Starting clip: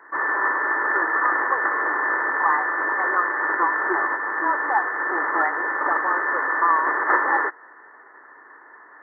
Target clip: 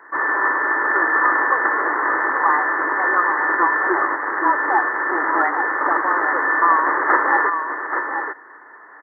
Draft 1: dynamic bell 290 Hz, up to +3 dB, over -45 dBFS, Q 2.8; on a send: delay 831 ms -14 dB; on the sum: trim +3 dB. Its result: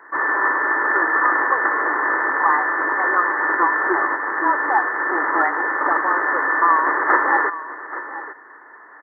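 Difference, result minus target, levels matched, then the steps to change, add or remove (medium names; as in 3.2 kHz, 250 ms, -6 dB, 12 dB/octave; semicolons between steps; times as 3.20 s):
echo-to-direct -7 dB
change: delay 831 ms -7 dB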